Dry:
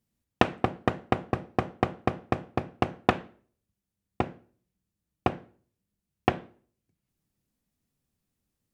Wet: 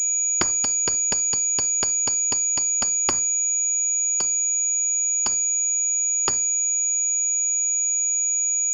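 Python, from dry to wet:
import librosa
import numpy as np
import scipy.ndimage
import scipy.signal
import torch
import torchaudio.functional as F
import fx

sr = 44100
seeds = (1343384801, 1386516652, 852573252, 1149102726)

p1 = fx.band_shuffle(x, sr, order='2341')
p2 = fx.level_steps(p1, sr, step_db=13)
p3 = p1 + F.gain(torch.from_numpy(p2), 1.5).numpy()
p4 = p3 + 10.0 ** (-41.0 / 20.0) * np.sin(2.0 * np.pi * 2400.0 * np.arange(len(p3)) / sr)
y = fx.pwm(p4, sr, carrier_hz=6800.0)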